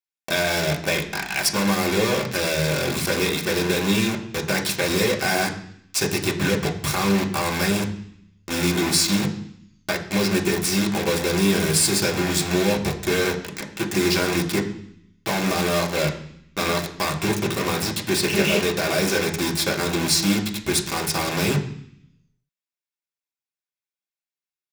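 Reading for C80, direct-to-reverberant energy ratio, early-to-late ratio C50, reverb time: 14.0 dB, -0.5 dB, 11.0 dB, 0.65 s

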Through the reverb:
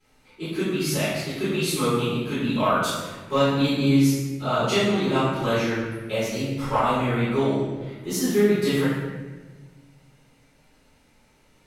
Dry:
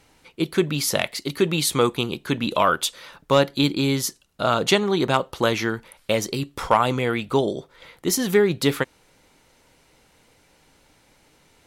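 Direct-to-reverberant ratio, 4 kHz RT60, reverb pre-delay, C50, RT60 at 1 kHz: -16.5 dB, 0.90 s, 3 ms, -1.5 dB, 1.2 s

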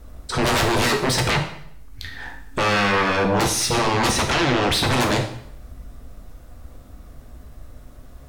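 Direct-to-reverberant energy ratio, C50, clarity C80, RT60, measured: 3.0 dB, 8.0 dB, 12.0 dB, 0.70 s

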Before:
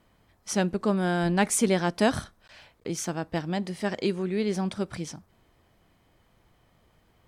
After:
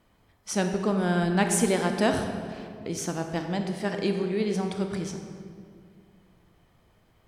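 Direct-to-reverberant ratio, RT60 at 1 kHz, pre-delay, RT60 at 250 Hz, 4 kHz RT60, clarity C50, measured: 4.5 dB, 2.0 s, 23 ms, 2.8 s, 1.3 s, 5.5 dB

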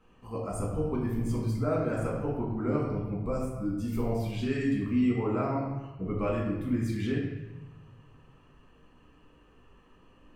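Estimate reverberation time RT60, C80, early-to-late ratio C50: 1.1 s, 4.0 dB, 2.0 dB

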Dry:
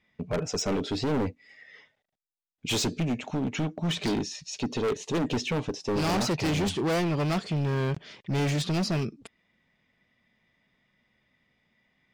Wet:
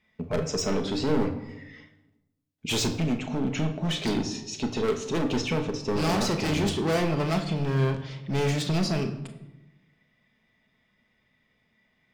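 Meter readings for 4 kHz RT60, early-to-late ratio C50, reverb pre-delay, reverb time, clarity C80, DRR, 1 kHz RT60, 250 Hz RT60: 0.65 s, 10.0 dB, 5 ms, 1.0 s, 13.0 dB, 5.0 dB, 0.90 s, 1.3 s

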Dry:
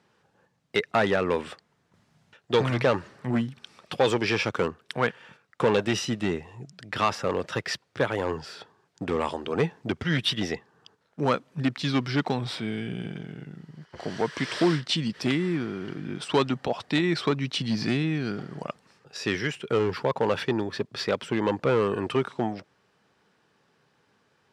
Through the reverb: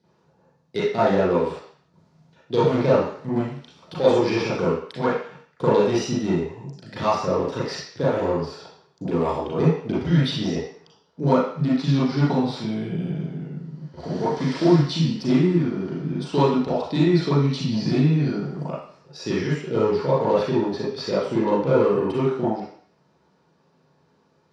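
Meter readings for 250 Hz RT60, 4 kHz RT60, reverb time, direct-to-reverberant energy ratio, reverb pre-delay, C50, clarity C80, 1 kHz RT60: 0.50 s, 0.60 s, 0.55 s, -11.0 dB, 35 ms, 1.0 dB, 5.5 dB, 0.55 s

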